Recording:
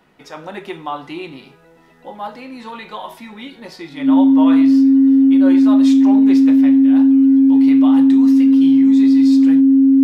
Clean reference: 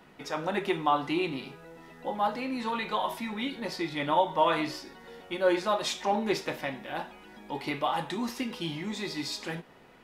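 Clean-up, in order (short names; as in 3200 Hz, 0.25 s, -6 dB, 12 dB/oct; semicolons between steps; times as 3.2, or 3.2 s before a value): notch 270 Hz, Q 30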